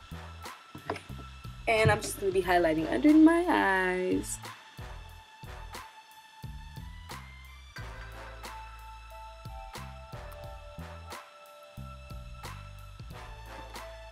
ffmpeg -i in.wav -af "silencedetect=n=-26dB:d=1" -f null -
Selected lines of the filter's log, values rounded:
silence_start: 4.34
silence_end: 14.12 | silence_duration: 9.78